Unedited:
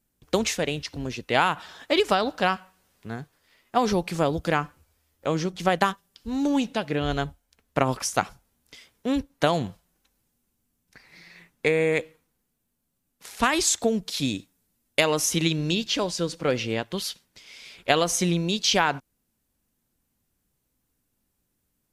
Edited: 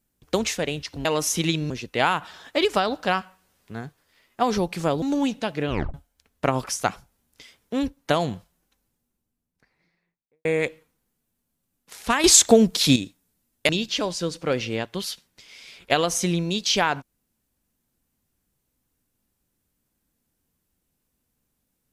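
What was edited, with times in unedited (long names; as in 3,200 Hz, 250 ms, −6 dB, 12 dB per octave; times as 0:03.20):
0:04.37–0:06.35: remove
0:07.02: tape stop 0.25 s
0:09.69–0:11.78: fade out and dull
0:13.57–0:14.29: clip gain +9 dB
0:15.02–0:15.67: move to 0:01.05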